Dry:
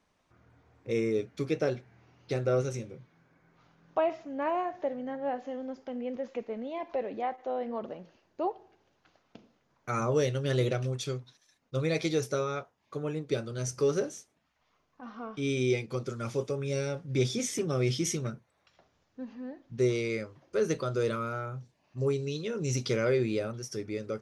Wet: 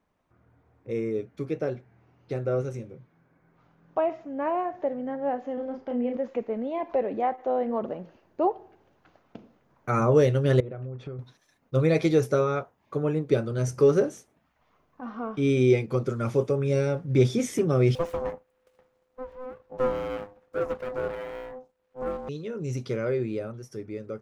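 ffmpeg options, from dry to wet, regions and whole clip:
ffmpeg -i in.wav -filter_complex "[0:a]asettb=1/sr,asplit=3[link_01][link_02][link_03];[link_01]atrim=end=5.544[link_04];[link_02]atrim=start=5.54:end=6.17,asetpts=PTS-STARTPTS,afade=type=in:duration=0.004:curve=qsin,afade=type=out:start_time=0.626:duration=0.004:curve=qsin,lowpass=frequency=5500:width=0.5412,lowpass=frequency=5500:width=1.3066,asplit=2[link_05][link_06];[link_06]adelay=33,volume=-4dB[link_07];[link_05][link_07]amix=inputs=2:normalize=0,atrim=end_sample=27783[link_08];[link_03]atrim=start=6.166[link_09];[link_04][link_08]acrossfade=duration=0.004:curve1=hsin:curve2=qsin[link_10];[link_10][link_09]acrossfade=duration=0.004:curve1=qsin:curve2=hsin,asettb=1/sr,asplit=3[link_11][link_12][link_13];[link_11]atrim=end=10.604[link_14];[link_12]atrim=start=10.6:end=11.19,asetpts=PTS-STARTPTS,afade=type=in:duration=0.004:curve=qsin,afade=type=out:start_time=0.586:duration=0.004:curve=qsin,lowpass=1700,acompressor=threshold=-41dB:ratio=8:attack=3.2:release=140:knee=1:detection=peak[link_15];[link_13]atrim=start=11.186[link_16];[link_14][link_15]acrossfade=duration=0.004:curve1=hsin:curve2=qsin[link_17];[link_17][link_16]acrossfade=duration=0.004:curve1=qsin:curve2=hsin,asettb=1/sr,asplit=3[link_18][link_19][link_20];[link_18]atrim=end=17.954[link_21];[link_19]atrim=start=17.95:end=22.29,asetpts=PTS-STARTPTS,afade=type=in:duration=0.004:curve=qsin,afade=type=out:start_time=4.336:duration=0.004:curve=qsin,acrossover=split=3000[link_22][link_23];[link_23]acompressor=threshold=-54dB:ratio=4:attack=1:release=60[link_24];[link_22][link_24]amix=inputs=2:normalize=0,aeval=exprs='abs(val(0))':channel_layout=same,aeval=exprs='val(0)*sin(2*PI*510*n/s)':channel_layout=same[link_25];[link_20]atrim=start=22.286[link_26];[link_21][link_25]acrossfade=duration=0.004:curve1=hsin:curve2=qsin[link_27];[link_27][link_26]acrossfade=duration=0.004:curve1=qsin:curve2=hsin,equalizer=frequency=5300:width_type=o:width=2.3:gain=-11.5,dynaudnorm=framelen=330:gausssize=31:maxgain=8dB" out.wav

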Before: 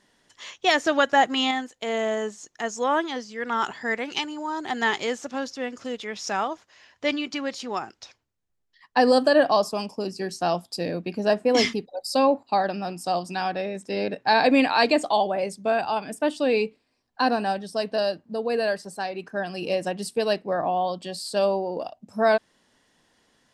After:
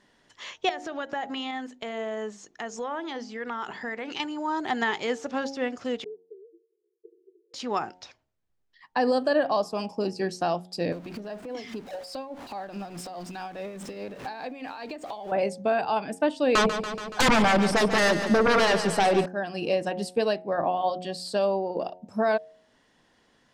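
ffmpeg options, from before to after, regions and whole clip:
ffmpeg -i in.wav -filter_complex "[0:a]asettb=1/sr,asplit=3[link_01][link_02][link_03];[link_01]atrim=end=0.694[link_04];[link_02]atrim=start=0.69:end=4.2,asetpts=PTS-STARTPTS,afade=type=in:duration=0.004:curve=qsin,afade=type=out:start_time=3.506:duration=0.004:curve=qsin,highshelf=frequency=9800:gain=-6.5,bandreject=frequency=50:width_type=h:width=6,bandreject=frequency=100:width_type=h:width=6,bandreject=frequency=150:width_type=h:width=6,bandreject=frequency=200:width_type=h:width=6,bandreject=frequency=250:width_type=h:width=6,bandreject=frequency=300:width_type=h:width=6,bandreject=frequency=350:width_type=h:width=6,bandreject=frequency=400:width_type=h:width=6,acompressor=threshold=-32dB:ratio=4:attack=3.2:release=140:knee=1:detection=peak[link_05];[link_03]atrim=start=4.196[link_06];[link_04][link_05]acrossfade=duration=0.004:curve1=hsin:curve2=qsin[link_07];[link_07][link_06]acrossfade=duration=0.004:curve1=qsin:curve2=hsin,asettb=1/sr,asplit=3[link_08][link_09][link_10];[link_08]atrim=end=6.044[link_11];[link_09]atrim=start=6.04:end=7.54,asetpts=PTS-STARTPTS,afade=type=in:duration=0.004:curve=qsin,afade=type=out:start_time=1.496:duration=0.004:curve=qsin,acompressor=threshold=-33dB:ratio=4:attack=3.2:release=140:knee=1:detection=peak,asuperpass=centerf=400:order=20:qfactor=3[link_12];[link_10]atrim=start=7.536[link_13];[link_11][link_12]acrossfade=duration=0.004:curve1=hsin:curve2=qsin[link_14];[link_14][link_13]acrossfade=duration=0.004:curve1=qsin:curve2=hsin,asettb=1/sr,asplit=3[link_15][link_16][link_17];[link_15]atrim=end=10.924[link_18];[link_16]atrim=start=10.92:end=15.32,asetpts=PTS-STARTPTS,afade=type=in:duration=0.004:curve=qsin,afade=type=out:start_time=4.396:duration=0.004:curve=qsin,aeval=exprs='val(0)+0.5*0.02*sgn(val(0))':channel_layout=same,acompressor=threshold=-32dB:ratio=16:attack=3.2:release=140:knee=1:detection=peak,tremolo=f=4.8:d=0.5[link_19];[link_17]atrim=start=15.316[link_20];[link_18][link_19]acrossfade=duration=0.004:curve1=hsin:curve2=qsin[link_21];[link_21][link_20]acrossfade=duration=0.004:curve1=qsin:curve2=hsin,asettb=1/sr,asplit=3[link_22][link_23][link_24];[link_22]atrim=end=16.554[link_25];[link_23]atrim=start=16.55:end=19.26,asetpts=PTS-STARTPTS,afade=type=in:duration=0.004:curve=qsin,afade=type=out:start_time=2.706:duration=0.004:curve=qsin,equalizer=frequency=1700:width_type=o:width=2.1:gain=-5.5,aeval=exprs='0.251*sin(PI/2*6.31*val(0)/0.251)':channel_layout=same,aecho=1:1:142|284|426|568|710|852|994:0.282|0.163|0.0948|0.055|0.0319|0.0185|0.0107,atrim=end_sample=119511[link_26];[link_24]atrim=start=19.256[link_27];[link_25][link_26]acrossfade=duration=0.004:curve1=hsin:curve2=qsin[link_28];[link_28][link_27]acrossfade=duration=0.004:curve1=qsin:curve2=hsin,bandreject=frequency=90.95:width_type=h:width=4,bandreject=frequency=181.9:width_type=h:width=4,bandreject=frequency=272.85:width_type=h:width=4,bandreject=frequency=363.8:width_type=h:width=4,bandreject=frequency=454.75:width_type=h:width=4,bandreject=frequency=545.7:width_type=h:width=4,bandreject=frequency=636.65:width_type=h:width=4,bandreject=frequency=727.6:width_type=h:width=4,bandreject=frequency=818.55:width_type=h:width=4,bandreject=frequency=909.5:width_type=h:width=4,alimiter=limit=-16dB:level=0:latency=1:release=465,lowpass=frequency=3700:poles=1,volume=2dB" out.wav

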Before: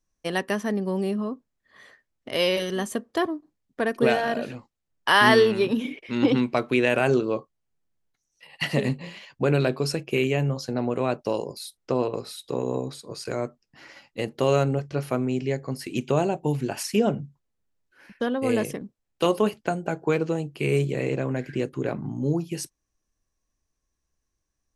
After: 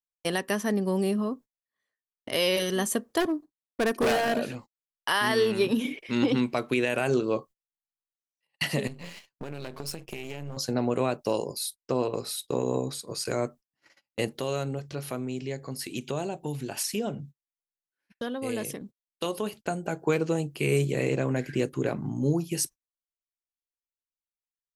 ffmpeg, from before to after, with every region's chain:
ffmpeg -i in.wav -filter_complex "[0:a]asettb=1/sr,asplit=3[link_01][link_02][link_03];[link_01]atrim=end=3.204[link_04];[link_02]atrim=start=3.2:end=4.39,asetpts=PTS-STARTPTS,afade=type=in:duration=0.004:curve=qsin,afade=type=out:start_time=1.186:duration=0.004:curve=qsin,agate=range=-13dB:threshold=-54dB:ratio=16:release=100:detection=peak,equalizer=frequency=330:width_type=o:width=1.6:gain=3,volume=21dB,asoftclip=hard,volume=-21dB[link_05];[link_03]atrim=start=4.386[link_06];[link_04][link_05]acrossfade=duration=0.004:curve1=hsin:curve2=qsin[link_07];[link_07][link_06]acrossfade=duration=0.004:curve1=qsin:curve2=hsin,asettb=1/sr,asplit=3[link_08][link_09][link_10];[link_08]atrim=end=8.874[link_11];[link_09]atrim=start=8.87:end=10.57,asetpts=PTS-STARTPTS,afade=type=in:duration=0.004:curve=qsin,afade=type=out:start_time=1.696:duration=0.004:curve=qsin,aeval=exprs='if(lt(val(0),0),0.251*val(0),val(0))':channel_layout=same,acompressor=threshold=-32dB:ratio=10:attack=3.2:release=140:knee=1:detection=peak[link_12];[link_10]atrim=start=10.566[link_13];[link_11][link_12]acrossfade=duration=0.004:curve1=hsin:curve2=qsin[link_14];[link_14][link_13]acrossfade=duration=0.004:curve1=qsin:curve2=hsin,asettb=1/sr,asplit=3[link_15][link_16][link_17];[link_15]atrim=end=14.334[link_18];[link_16]atrim=start=14.33:end=19.65,asetpts=PTS-STARTPTS,afade=type=in:duration=0.004:curve=qsin,afade=type=out:start_time=5.316:duration=0.004:curve=qsin,acompressor=threshold=-42dB:ratio=1.5:attack=3.2:release=140:knee=1:detection=peak,equalizer=frequency=3700:width=3:gain=5[link_19];[link_17]atrim=start=19.646[link_20];[link_18][link_19]acrossfade=duration=0.004:curve1=hsin:curve2=qsin[link_21];[link_21][link_20]acrossfade=duration=0.004:curve1=qsin:curve2=hsin,agate=range=-34dB:threshold=-44dB:ratio=16:detection=peak,highshelf=frequency=6500:gain=11.5,alimiter=limit=-14.5dB:level=0:latency=1:release=244" out.wav

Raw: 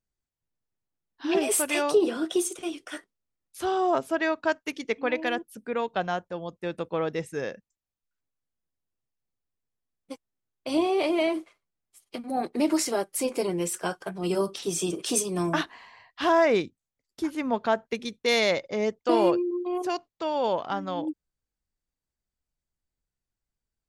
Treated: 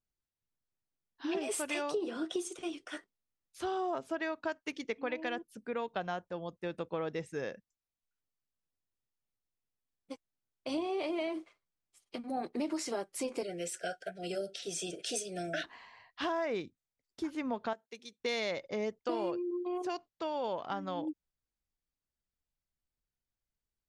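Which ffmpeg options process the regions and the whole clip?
ffmpeg -i in.wav -filter_complex "[0:a]asettb=1/sr,asplit=3[link_01][link_02][link_03];[link_01]atrim=end=13.434[link_04];[link_02]atrim=start=13.43:end=15.64,asetpts=PTS-STARTPTS,afade=type=in:duration=0.004:curve=qsin,afade=type=out:start_time=2.206:duration=0.004:curve=qsin,asuperstop=centerf=1000:order=20:qfactor=1.7,lowshelf=frequency=430:width_type=q:width=1.5:gain=-7.5[link_05];[link_03]atrim=start=15.636[link_06];[link_04][link_05]acrossfade=duration=0.004:curve1=hsin:curve2=qsin[link_07];[link_07][link_06]acrossfade=duration=0.004:curve1=qsin:curve2=hsin,asettb=1/sr,asplit=3[link_08][link_09][link_10];[link_08]atrim=end=17.734[link_11];[link_09]atrim=start=17.73:end=18.2,asetpts=PTS-STARTPTS,afade=type=in:duration=0.004:curve=qsin,afade=type=out:start_time=0.466:duration=0.004:curve=qsin,highpass=frequency=1200:poles=1,equalizer=frequency=1600:width=0.39:gain=-10.5[link_12];[link_10]atrim=start=18.196[link_13];[link_11][link_12]acrossfade=duration=0.004:curve1=hsin:curve2=qsin[link_14];[link_14][link_13]acrossfade=duration=0.004:curve1=qsin:curve2=hsin,lowpass=7600,acompressor=threshold=-27dB:ratio=4,volume=-5dB" out.wav

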